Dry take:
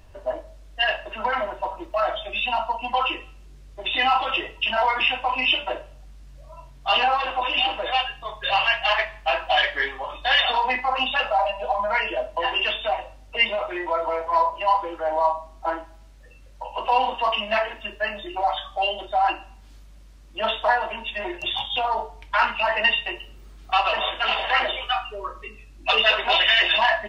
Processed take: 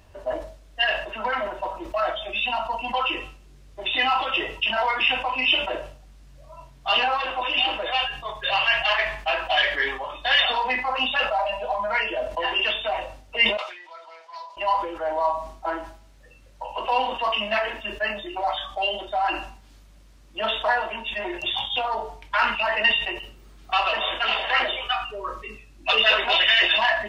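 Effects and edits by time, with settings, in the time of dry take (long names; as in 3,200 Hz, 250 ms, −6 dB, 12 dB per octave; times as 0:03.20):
0:13.57–0:14.57: resonant band-pass 4,800 Hz, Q 1.8
whole clip: high-pass filter 65 Hz 6 dB per octave; dynamic equaliser 830 Hz, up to −4 dB, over −31 dBFS, Q 1.9; level that may fall only so fast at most 86 dB per second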